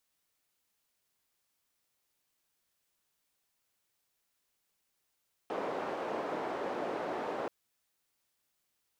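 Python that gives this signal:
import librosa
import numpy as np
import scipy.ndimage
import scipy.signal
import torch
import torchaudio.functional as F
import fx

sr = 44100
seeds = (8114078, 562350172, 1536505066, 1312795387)

y = fx.band_noise(sr, seeds[0], length_s=1.98, low_hz=430.0, high_hz=550.0, level_db=-36.5)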